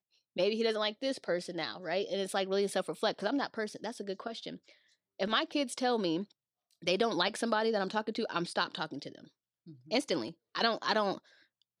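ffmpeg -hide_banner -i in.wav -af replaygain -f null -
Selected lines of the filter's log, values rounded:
track_gain = +12.5 dB
track_peak = 0.161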